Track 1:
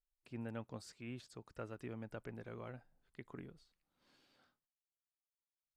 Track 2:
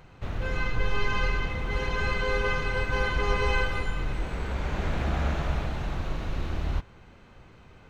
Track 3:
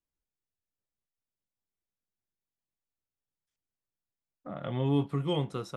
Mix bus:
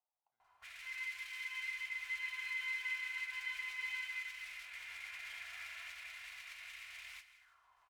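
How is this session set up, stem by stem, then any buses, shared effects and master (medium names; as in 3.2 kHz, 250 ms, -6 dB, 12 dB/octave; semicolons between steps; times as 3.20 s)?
-12.0 dB, 0.00 s, no send, no echo send, peak limiter -42.5 dBFS, peak gain reduction 10.5 dB; sample-rate reducer 1.8 kHz; level flattener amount 70%
+1.0 dB, 0.40 s, no send, echo send -16 dB, comb 2.9 ms, depth 77%; compression, threshold -23 dBFS, peak gain reduction 8.5 dB; modulation noise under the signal 11 dB
-7.5 dB, 0.00 s, no send, no echo send, none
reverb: none
echo: feedback delay 163 ms, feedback 59%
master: amplifier tone stack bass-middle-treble 10-0-10; auto-wah 760–2200 Hz, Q 3.9, up, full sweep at -34.5 dBFS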